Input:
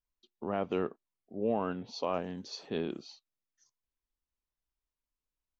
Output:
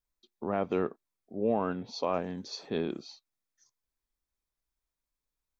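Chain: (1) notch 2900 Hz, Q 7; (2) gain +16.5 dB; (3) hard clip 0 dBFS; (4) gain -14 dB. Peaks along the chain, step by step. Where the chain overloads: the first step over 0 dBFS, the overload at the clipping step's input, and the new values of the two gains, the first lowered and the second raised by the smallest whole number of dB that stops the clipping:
-19.0, -2.5, -2.5, -16.5 dBFS; no overload

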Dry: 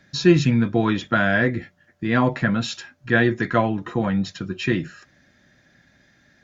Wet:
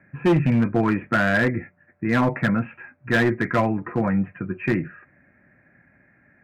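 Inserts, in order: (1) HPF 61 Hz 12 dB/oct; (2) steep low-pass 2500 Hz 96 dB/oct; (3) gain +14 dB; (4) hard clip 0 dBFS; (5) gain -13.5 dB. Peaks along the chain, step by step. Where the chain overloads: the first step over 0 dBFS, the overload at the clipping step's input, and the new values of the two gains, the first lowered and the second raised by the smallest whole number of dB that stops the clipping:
-4.0, -4.5, +9.5, 0.0, -13.5 dBFS; step 3, 9.5 dB; step 3 +4 dB, step 5 -3.5 dB

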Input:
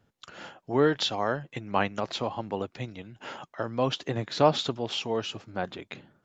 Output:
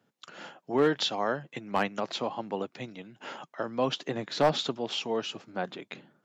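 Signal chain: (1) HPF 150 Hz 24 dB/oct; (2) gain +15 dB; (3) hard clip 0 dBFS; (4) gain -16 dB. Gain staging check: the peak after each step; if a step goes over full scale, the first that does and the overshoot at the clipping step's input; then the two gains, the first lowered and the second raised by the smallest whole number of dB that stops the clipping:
-7.0, +8.0, 0.0, -16.0 dBFS; step 2, 8.0 dB; step 2 +7 dB, step 4 -8 dB

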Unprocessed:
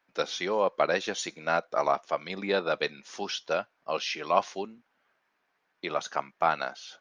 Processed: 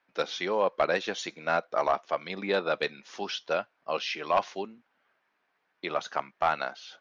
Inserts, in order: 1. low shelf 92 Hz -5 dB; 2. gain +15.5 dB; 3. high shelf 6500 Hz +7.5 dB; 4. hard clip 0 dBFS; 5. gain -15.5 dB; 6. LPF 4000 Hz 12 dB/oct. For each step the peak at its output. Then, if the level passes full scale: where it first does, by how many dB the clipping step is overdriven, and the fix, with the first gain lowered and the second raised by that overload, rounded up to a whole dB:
-8.0, +7.5, +7.5, 0.0, -15.5, -15.0 dBFS; step 2, 7.5 dB; step 2 +7.5 dB, step 5 -7.5 dB

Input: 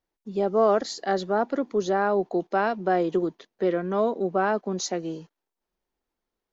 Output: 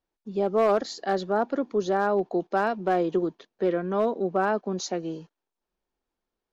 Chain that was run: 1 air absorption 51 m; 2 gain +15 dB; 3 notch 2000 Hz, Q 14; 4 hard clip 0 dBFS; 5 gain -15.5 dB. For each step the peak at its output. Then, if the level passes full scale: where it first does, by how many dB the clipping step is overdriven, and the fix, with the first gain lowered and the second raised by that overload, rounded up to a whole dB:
-11.5, +3.5, +3.5, 0.0, -15.5 dBFS; step 2, 3.5 dB; step 2 +11 dB, step 5 -11.5 dB

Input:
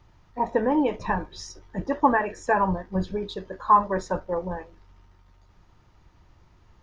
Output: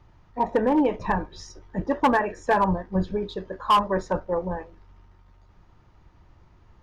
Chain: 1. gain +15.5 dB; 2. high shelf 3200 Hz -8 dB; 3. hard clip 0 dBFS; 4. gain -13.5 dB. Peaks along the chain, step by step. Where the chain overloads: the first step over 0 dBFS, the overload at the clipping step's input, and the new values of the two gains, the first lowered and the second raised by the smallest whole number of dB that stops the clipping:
+9.0, +8.5, 0.0, -13.5 dBFS; step 1, 8.5 dB; step 1 +6.5 dB, step 4 -4.5 dB

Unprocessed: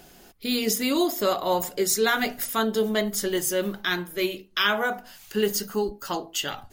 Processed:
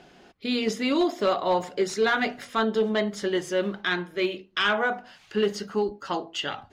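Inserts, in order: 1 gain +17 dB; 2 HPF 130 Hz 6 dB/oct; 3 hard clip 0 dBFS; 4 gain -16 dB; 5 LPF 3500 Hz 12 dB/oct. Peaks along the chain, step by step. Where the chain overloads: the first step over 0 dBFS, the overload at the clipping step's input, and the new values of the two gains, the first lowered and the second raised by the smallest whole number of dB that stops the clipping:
+7.5, +7.5, 0.0, -16.0, -15.5 dBFS; step 1, 7.5 dB; step 1 +9 dB, step 4 -8 dB

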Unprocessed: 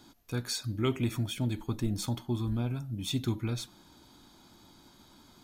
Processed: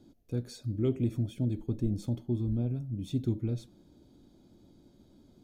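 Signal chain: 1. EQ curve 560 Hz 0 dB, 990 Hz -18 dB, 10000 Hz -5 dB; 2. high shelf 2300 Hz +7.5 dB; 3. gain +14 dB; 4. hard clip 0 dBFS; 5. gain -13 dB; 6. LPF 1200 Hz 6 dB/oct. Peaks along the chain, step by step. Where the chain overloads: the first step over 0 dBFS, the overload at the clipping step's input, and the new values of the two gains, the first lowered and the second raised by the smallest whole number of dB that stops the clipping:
-18.0, -18.0, -4.0, -4.0, -17.0, -17.5 dBFS; no overload

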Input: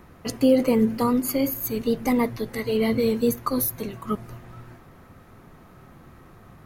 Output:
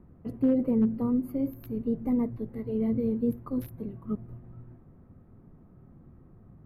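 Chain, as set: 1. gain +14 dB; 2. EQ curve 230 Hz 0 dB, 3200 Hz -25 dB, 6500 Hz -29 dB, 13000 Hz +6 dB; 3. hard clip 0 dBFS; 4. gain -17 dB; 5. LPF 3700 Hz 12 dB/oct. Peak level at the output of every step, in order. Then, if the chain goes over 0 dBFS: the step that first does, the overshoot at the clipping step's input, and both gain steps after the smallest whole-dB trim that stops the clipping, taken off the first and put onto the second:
+5.5, +3.0, 0.0, -17.0, -17.0 dBFS; step 1, 3.0 dB; step 1 +11 dB, step 4 -14 dB

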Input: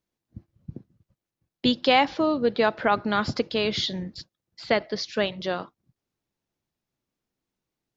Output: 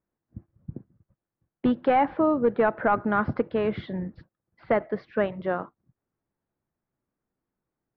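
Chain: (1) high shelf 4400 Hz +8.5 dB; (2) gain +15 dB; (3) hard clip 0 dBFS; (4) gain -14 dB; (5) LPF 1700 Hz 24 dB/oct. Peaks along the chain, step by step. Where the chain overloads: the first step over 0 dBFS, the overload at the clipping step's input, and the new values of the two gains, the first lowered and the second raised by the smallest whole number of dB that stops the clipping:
-6.5, +8.5, 0.0, -14.0, -12.5 dBFS; step 2, 8.5 dB; step 2 +6 dB, step 4 -5 dB

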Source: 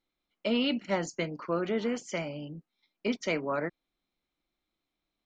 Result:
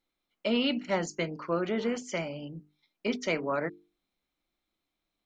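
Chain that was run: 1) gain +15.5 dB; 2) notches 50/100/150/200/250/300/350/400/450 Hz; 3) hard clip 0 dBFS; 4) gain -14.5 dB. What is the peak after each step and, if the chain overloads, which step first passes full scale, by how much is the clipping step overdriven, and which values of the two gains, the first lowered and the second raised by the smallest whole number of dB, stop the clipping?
-1.5, -1.5, -1.5, -16.0 dBFS; no overload

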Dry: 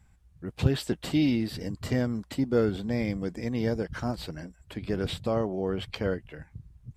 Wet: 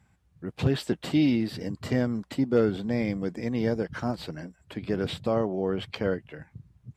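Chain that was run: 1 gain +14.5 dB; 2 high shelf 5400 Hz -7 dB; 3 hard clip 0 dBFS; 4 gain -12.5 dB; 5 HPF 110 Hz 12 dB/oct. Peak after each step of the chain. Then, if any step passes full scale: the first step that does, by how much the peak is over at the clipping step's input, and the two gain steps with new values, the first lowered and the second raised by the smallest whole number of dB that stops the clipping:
+6.0, +6.0, 0.0, -12.5, -10.0 dBFS; step 1, 6.0 dB; step 1 +8.5 dB, step 4 -6.5 dB

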